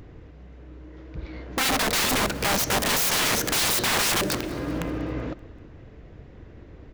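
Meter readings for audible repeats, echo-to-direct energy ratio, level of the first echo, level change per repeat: 3, -19.5 dB, -21.0 dB, -5.5 dB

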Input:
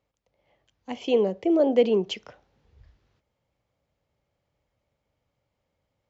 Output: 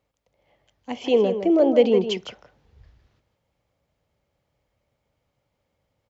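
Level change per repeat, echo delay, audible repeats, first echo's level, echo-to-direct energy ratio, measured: no steady repeat, 0.159 s, 1, -9.0 dB, -9.0 dB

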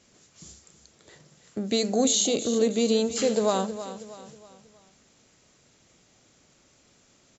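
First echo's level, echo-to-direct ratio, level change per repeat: -12.5 dB, -11.5 dB, -7.5 dB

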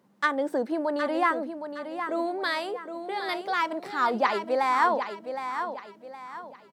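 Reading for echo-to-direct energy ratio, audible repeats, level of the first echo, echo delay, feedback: -8.0 dB, 3, -8.5 dB, 0.765 s, 35%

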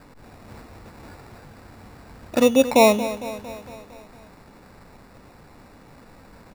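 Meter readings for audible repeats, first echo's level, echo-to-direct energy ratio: 5, -14.0 dB, -12.0 dB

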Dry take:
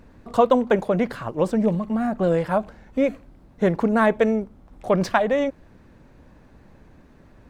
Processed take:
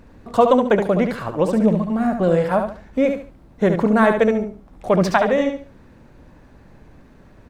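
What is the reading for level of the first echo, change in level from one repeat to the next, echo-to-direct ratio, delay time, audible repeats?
-6.5 dB, -11.5 dB, -6.0 dB, 71 ms, 3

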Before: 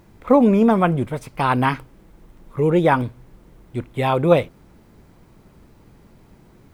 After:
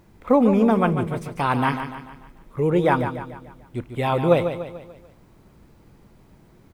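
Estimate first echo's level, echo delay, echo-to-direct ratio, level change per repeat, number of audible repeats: -9.0 dB, 0.146 s, -8.0 dB, -6.5 dB, 4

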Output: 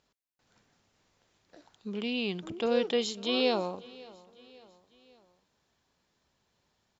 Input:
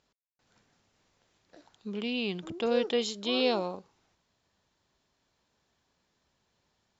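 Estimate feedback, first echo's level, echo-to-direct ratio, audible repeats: 50%, -22.0 dB, -21.0 dB, 3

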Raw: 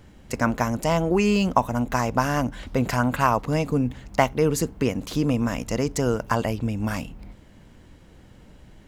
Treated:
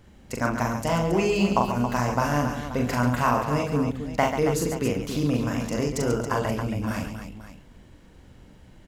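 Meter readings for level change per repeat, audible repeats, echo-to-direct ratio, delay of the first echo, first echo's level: no steady repeat, 4, -0.5 dB, 41 ms, -3.0 dB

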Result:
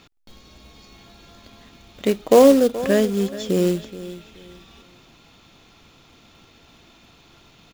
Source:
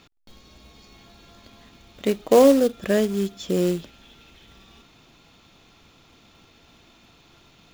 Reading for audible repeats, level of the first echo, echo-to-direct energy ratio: 2, -15.5 dB, -15.0 dB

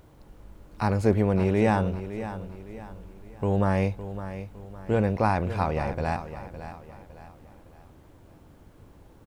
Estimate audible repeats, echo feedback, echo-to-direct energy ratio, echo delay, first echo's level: 3, 39%, -11.5 dB, 0.56 s, -12.0 dB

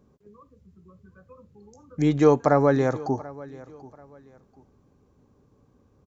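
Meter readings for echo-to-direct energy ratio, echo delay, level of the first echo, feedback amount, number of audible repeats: -19.5 dB, 0.736 s, -20.0 dB, 30%, 2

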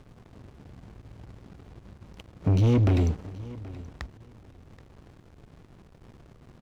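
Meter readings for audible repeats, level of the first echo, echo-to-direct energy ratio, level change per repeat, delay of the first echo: 2, -19.0 dB, -19.0 dB, -15.0 dB, 0.777 s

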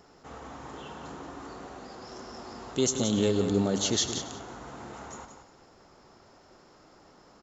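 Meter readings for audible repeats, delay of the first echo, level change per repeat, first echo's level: 4, 98 ms, no steady repeat, -14.0 dB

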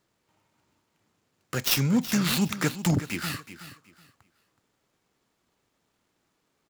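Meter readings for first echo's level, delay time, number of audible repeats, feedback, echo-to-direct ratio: -13.0 dB, 0.373 s, 2, 23%, -13.0 dB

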